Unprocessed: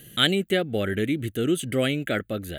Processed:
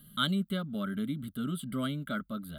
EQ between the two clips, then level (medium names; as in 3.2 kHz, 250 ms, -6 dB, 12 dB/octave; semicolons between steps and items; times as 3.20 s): treble shelf 7.3 kHz -8 dB; static phaser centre 510 Hz, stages 8; static phaser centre 1.8 kHz, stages 6; 0.0 dB